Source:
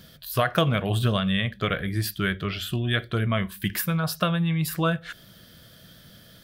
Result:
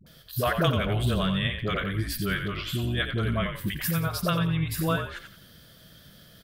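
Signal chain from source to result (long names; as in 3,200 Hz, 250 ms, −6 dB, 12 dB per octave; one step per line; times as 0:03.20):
all-pass dispersion highs, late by 65 ms, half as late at 480 Hz
echo with shifted repeats 88 ms, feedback 32%, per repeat −48 Hz, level −7.5 dB
level −2.5 dB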